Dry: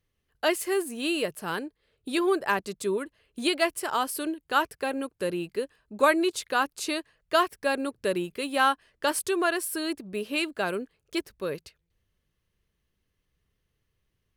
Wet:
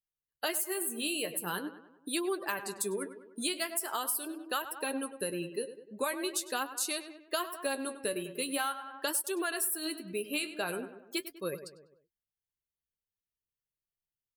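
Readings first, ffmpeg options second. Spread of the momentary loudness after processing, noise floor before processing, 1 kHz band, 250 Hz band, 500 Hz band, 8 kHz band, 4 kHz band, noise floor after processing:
7 LU, −78 dBFS, −10.0 dB, −8.0 dB, −8.5 dB, +2.0 dB, −4.5 dB, below −85 dBFS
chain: -filter_complex "[0:a]aemphasis=mode=production:type=75fm,afftdn=noise_reduction=23:noise_floor=-38,asplit=2[link_01][link_02];[link_02]adelay=99,lowpass=frequency=2400:poles=1,volume=-13dB,asplit=2[link_03][link_04];[link_04]adelay=99,lowpass=frequency=2400:poles=1,volume=0.53,asplit=2[link_05][link_06];[link_06]adelay=99,lowpass=frequency=2400:poles=1,volume=0.53,asplit=2[link_07][link_08];[link_08]adelay=99,lowpass=frequency=2400:poles=1,volume=0.53,asplit=2[link_09][link_10];[link_10]adelay=99,lowpass=frequency=2400:poles=1,volume=0.53[link_11];[link_03][link_05][link_07][link_09][link_11]amix=inputs=5:normalize=0[link_12];[link_01][link_12]amix=inputs=2:normalize=0,flanger=delay=4.9:depth=9.2:regen=48:speed=0.43:shape=triangular,acompressor=threshold=-31dB:ratio=6,volume=1dB"

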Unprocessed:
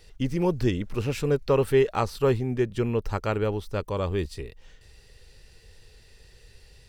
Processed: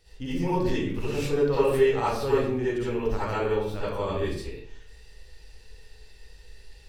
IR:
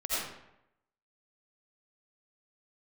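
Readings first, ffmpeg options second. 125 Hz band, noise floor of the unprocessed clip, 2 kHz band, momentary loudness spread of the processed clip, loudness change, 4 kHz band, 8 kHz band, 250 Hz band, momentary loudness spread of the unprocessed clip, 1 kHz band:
−4.5 dB, −54 dBFS, +1.0 dB, 9 LU, −0.5 dB, +0.5 dB, −0.5 dB, −1.0 dB, 8 LU, +2.0 dB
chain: -filter_complex "[1:a]atrim=start_sample=2205,asetrate=61740,aresample=44100[link_01];[0:a][link_01]afir=irnorm=-1:irlink=0,volume=-3.5dB"

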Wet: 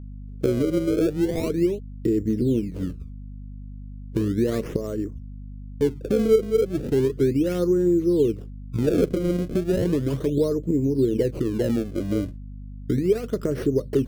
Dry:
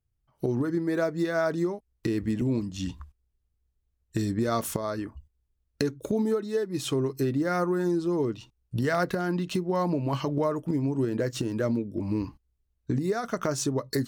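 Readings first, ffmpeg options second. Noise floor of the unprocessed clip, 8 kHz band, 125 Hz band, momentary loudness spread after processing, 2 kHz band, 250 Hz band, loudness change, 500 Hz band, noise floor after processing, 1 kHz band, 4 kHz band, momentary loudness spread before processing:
−76 dBFS, −4.5 dB, +4.0 dB, 20 LU, −5.5 dB, +5.0 dB, +5.0 dB, +6.5 dB, −37 dBFS, −9.5 dB, −2.0 dB, 7 LU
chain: -af "acrusher=samples=28:mix=1:aa=0.000001:lfo=1:lforange=44.8:lforate=0.35,lowshelf=frequency=600:width_type=q:width=3:gain=9.5,aeval=exprs='val(0)+0.0355*(sin(2*PI*50*n/s)+sin(2*PI*2*50*n/s)/2+sin(2*PI*3*50*n/s)/3+sin(2*PI*4*50*n/s)/4+sin(2*PI*5*50*n/s)/5)':channel_layout=same,volume=-7dB"

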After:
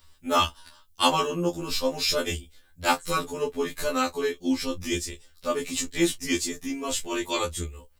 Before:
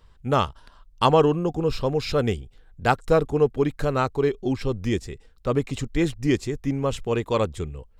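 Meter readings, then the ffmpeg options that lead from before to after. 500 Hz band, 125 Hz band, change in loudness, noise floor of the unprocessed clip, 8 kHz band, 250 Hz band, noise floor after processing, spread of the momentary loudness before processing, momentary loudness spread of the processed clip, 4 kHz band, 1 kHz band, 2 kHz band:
−6.5 dB, −12.5 dB, −3.0 dB, −54 dBFS, +12.0 dB, −3.5 dB, −58 dBFS, 8 LU, 7 LU, +6.5 dB, −2.0 dB, +1.5 dB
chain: -af "aecho=1:1:15|40:0.596|0.133,crystalizer=i=6.5:c=0,afftfilt=real='re*2*eq(mod(b,4),0)':imag='im*2*eq(mod(b,4),0)':win_size=2048:overlap=0.75,volume=-4dB"

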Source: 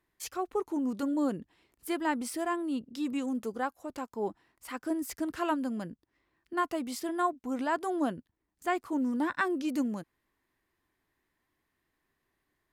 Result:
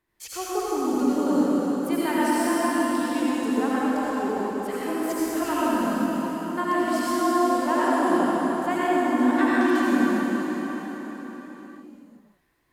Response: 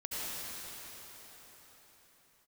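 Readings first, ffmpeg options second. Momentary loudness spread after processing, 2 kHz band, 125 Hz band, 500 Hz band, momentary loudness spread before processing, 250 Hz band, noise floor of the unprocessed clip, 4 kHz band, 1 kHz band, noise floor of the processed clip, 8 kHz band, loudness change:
11 LU, +9.5 dB, +9.5 dB, +10.0 dB, 9 LU, +10.0 dB, −81 dBFS, +9.5 dB, +10.0 dB, −57 dBFS, +9.5 dB, +9.0 dB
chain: -filter_complex "[1:a]atrim=start_sample=2205[link_01];[0:a][link_01]afir=irnorm=-1:irlink=0,volume=5dB"

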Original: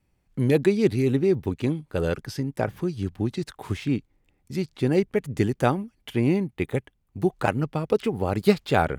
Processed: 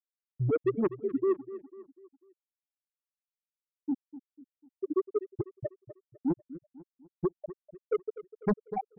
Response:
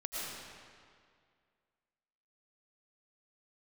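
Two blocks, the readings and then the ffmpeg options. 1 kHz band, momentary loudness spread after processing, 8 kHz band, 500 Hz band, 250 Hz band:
−12.0 dB, 19 LU, below −35 dB, −8.5 dB, −10.5 dB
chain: -filter_complex "[0:a]afftfilt=real='re*gte(hypot(re,im),0.891)':imag='im*gte(hypot(re,im),0.891)':win_size=1024:overlap=0.75,acrossover=split=1600[link_01][link_02];[link_02]acontrast=55[link_03];[link_01][link_03]amix=inputs=2:normalize=0,asoftclip=type=tanh:threshold=-21.5dB,aexciter=amount=6.2:drive=3.3:freq=8400,asplit=2[link_04][link_05];[link_05]adelay=248,lowpass=frequency=3300:poles=1,volume=-15dB,asplit=2[link_06][link_07];[link_07]adelay=248,lowpass=frequency=3300:poles=1,volume=0.45,asplit=2[link_08][link_09];[link_09]adelay=248,lowpass=frequency=3300:poles=1,volume=0.45,asplit=2[link_10][link_11];[link_11]adelay=248,lowpass=frequency=3300:poles=1,volume=0.45[link_12];[link_06][link_08][link_10][link_12]amix=inputs=4:normalize=0[link_13];[link_04][link_13]amix=inputs=2:normalize=0,afftfilt=real='re*(1-between(b*sr/1024,730*pow(6000/730,0.5+0.5*sin(2*PI*2.4*pts/sr))/1.41,730*pow(6000/730,0.5+0.5*sin(2*PI*2.4*pts/sr))*1.41))':imag='im*(1-between(b*sr/1024,730*pow(6000/730,0.5+0.5*sin(2*PI*2.4*pts/sr))/1.41,730*pow(6000/730,0.5+0.5*sin(2*PI*2.4*pts/sr))*1.41))':win_size=1024:overlap=0.75"

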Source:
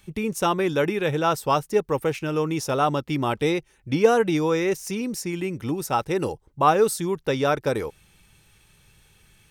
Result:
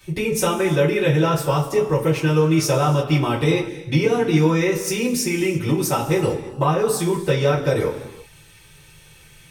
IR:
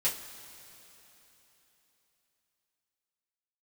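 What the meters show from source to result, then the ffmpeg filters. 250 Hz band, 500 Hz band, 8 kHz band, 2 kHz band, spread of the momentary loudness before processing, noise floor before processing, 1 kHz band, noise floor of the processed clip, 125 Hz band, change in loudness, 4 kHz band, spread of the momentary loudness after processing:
+5.0 dB, +3.0 dB, +7.0 dB, +4.0 dB, 9 LU, −60 dBFS, −1.0 dB, −48 dBFS, +10.5 dB, +4.0 dB, +5.0 dB, 5 LU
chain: -filter_complex "[0:a]acrossover=split=220[link_01][link_02];[link_02]acompressor=threshold=-27dB:ratio=6[link_03];[link_01][link_03]amix=inputs=2:normalize=0[link_04];[1:a]atrim=start_sample=2205,afade=type=out:start_time=0.42:duration=0.01,atrim=end_sample=18963[link_05];[link_04][link_05]afir=irnorm=-1:irlink=0,volume=3.5dB"

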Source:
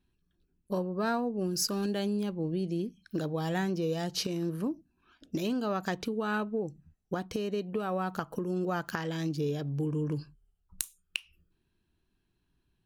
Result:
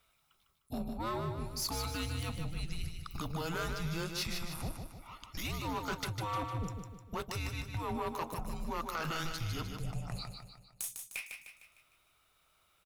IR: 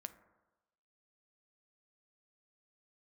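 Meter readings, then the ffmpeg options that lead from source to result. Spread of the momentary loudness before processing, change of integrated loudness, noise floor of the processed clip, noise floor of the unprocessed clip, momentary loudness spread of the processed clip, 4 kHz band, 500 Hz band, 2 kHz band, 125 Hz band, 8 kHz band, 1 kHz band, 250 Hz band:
8 LU, −5.5 dB, −72 dBFS, −77 dBFS, 10 LU, −1.5 dB, −10.0 dB, −2.5 dB, −3.0 dB, −2.5 dB, −2.0 dB, −10.5 dB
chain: -filter_complex "[0:a]highpass=510,highshelf=frequency=6300:gain=7,afreqshift=-330,areverse,acompressor=threshold=-44dB:ratio=6,areverse,aeval=exprs='0.0668*(cos(1*acos(clip(val(0)/0.0668,-1,1)))-cos(1*PI/2))+0.00376*(cos(6*acos(clip(val(0)/0.0668,-1,1)))-cos(6*PI/2))':channel_layout=same,equalizer=frequency=1200:width=1.5:gain=4.5,asplit=2[link_01][link_02];[link_02]aeval=exprs='0.0631*sin(PI/2*5.01*val(0)/0.0631)':channel_layout=same,volume=-11.5dB[link_03];[link_01][link_03]amix=inputs=2:normalize=0,aecho=1:1:152|304|456|608|760|912:0.501|0.236|0.111|0.052|0.0245|0.0115"

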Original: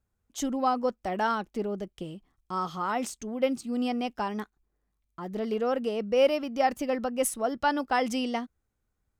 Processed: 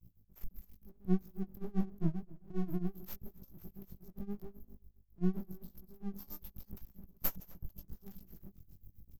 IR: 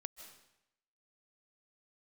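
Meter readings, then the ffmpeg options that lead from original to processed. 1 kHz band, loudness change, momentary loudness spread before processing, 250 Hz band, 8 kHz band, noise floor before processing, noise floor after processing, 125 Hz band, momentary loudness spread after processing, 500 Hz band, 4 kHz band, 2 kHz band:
−28.5 dB, −11.0 dB, 12 LU, −8.5 dB, below −20 dB, −79 dBFS, −69 dBFS, +5.0 dB, 20 LU, −20.5 dB, below −20 dB, −26.0 dB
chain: -filter_complex "[0:a]asplit=2[link_01][link_02];[1:a]atrim=start_sample=2205[link_03];[link_02][link_03]afir=irnorm=-1:irlink=0,volume=-5.5dB[link_04];[link_01][link_04]amix=inputs=2:normalize=0,afftfilt=real='re*(1-between(b*sr/4096,200,12000))':imag='im*(1-between(b*sr/4096,200,12000))':win_size=4096:overlap=0.75,aeval=exprs='max(val(0),0)':channel_layout=same,areverse,acompressor=mode=upward:threshold=-50dB:ratio=2.5,areverse,flanger=delay=16.5:depth=6:speed=0.85,acrossover=split=270[link_05][link_06];[link_06]acompressor=threshold=-47dB:ratio=10[link_07];[link_05][link_07]amix=inputs=2:normalize=0,equalizer=frequency=6300:width_type=o:width=1:gain=7,asplit=2[link_08][link_09];[link_09]adelay=256,lowpass=frequency=1400:poles=1,volume=-20dB,asplit=2[link_10][link_11];[link_11]adelay=256,lowpass=frequency=1400:poles=1,volume=0.18[link_12];[link_08][link_10][link_12]amix=inputs=3:normalize=0,tremolo=f=7.5:d=0.91,volume=16.5dB"

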